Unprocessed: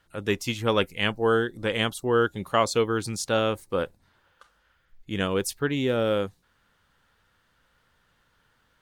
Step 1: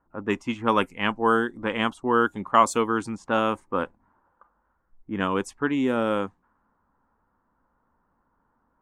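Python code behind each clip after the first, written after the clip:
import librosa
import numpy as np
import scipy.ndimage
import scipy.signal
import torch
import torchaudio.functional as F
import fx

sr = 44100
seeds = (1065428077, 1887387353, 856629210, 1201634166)

y = fx.graphic_eq(x, sr, hz=(125, 250, 500, 1000, 4000, 8000), db=(-7, 9, -4, 12, -12, 8))
y = fx.env_lowpass(y, sr, base_hz=800.0, full_db=-15.5)
y = fx.dynamic_eq(y, sr, hz=2900.0, q=1.4, threshold_db=-38.0, ratio=4.0, max_db=5)
y = y * librosa.db_to_amplitude(-2.5)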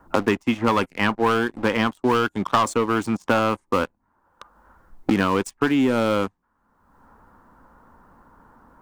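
y = fx.leveller(x, sr, passes=3)
y = fx.band_squash(y, sr, depth_pct=100)
y = y * librosa.db_to_amplitude(-6.5)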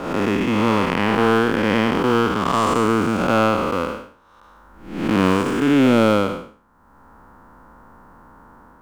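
y = fx.spec_blur(x, sr, span_ms=295.0)
y = y * librosa.db_to_amplitude(7.5)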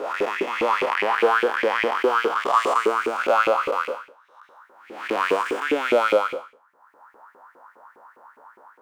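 y = fx.filter_lfo_highpass(x, sr, shape='saw_up', hz=4.9, low_hz=370.0, high_hz=2500.0, q=5.1)
y = y * librosa.db_to_amplitude(-6.5)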